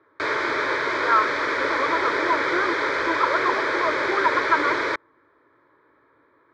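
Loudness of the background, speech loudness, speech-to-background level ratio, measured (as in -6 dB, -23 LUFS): -23.5 LUFS, -25.5 LUFS, -2.0 dB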